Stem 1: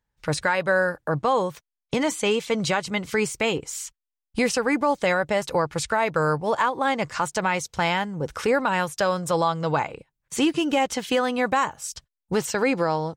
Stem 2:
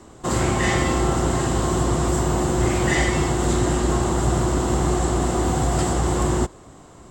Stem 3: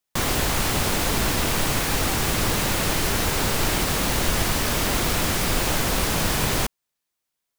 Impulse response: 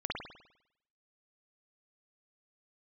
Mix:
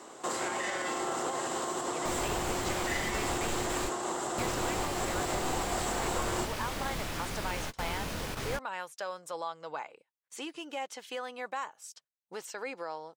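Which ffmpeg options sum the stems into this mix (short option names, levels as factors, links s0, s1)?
-filter_complex "[0:a]volume=0.2,asplit=2[s0][s1];[1:a]alimiter=limit=0.141:level=0:latency=1:release=241,volume=1.12[s2];[2:a]highshelf=f=7400:g=-8,acontrast=75,flanger=delay=22.5:depth=6.9:speed=0.31,adelay=1900,volume=0.15[s3];[s1]apad=whole_len=418477[s4];[s3][s4]sidechaingate=range=0.0224:threshold=0.00355:ratio=16:detection=peak[s5];[s0][s2]amix=inputs=2:normalize=0,highpass=450,alimiter=limit=0.0668:level=0:latency=1:release=271,volume=1[s6];[s5][s6]amix=inputs=2:normalize=0"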